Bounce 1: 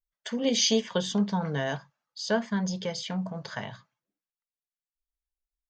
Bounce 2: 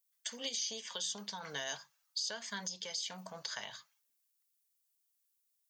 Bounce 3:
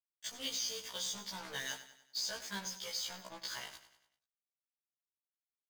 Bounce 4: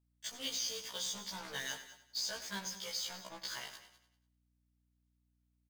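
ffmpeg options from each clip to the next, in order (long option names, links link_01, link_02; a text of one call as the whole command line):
ffmpeg -i in.wav -filter_complex "[0:a]aderivative,acrossover=split=1200|3700[link_01][link_02][link_03];[link_01]acompressor=threshold=-54dB:ratio=4[link_04];[link_02]acompressor=threshold=-56dB:ratio=4[link_05];[link_03]acompressor=threshold=-44dB:ratio=4[link_06];[link_04][link_05][link_06]amix=inputs=3:normalize=0,alimiter=level_in=16.5dB:limit=-24dB:level=0:latency=1:release=337,volume=-16.5dB,volume=13.5dB" out.wav
ffmpeg -i in.wav -filter_complex "[0:a]acrusher=bits=6:mix=0:aa=0.5,asplit=2[link_01][link_02];[link_02]aecho=0:1:97|194|291|388|485:0.224|0.105|0.0495|0.0232|0.0109[link_03];[link_01][link_03]amix=inputs=2:normalize=0,afftfilt=real='re*1.73*eq(mod(b,3),0)':imag='im*1.73*eq(mod(b,3),0)':win_size=2048:overlap=0.75,volume=1.5dB" out.wav
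ffmpeg -i in.wav -af "aeval=exprs='val(0)+0.000158*(sin(2*PI*60*n/s)+sin(2*PI*2*60*n/s)/2+sin(2*PI*3*60*n/s)/3+sin(2*PI*4*60*n/s)/4+sin(2*PI*5*60*n/s)/5)':channel_layout=same,aecho=1:1:204:0.15" out.wav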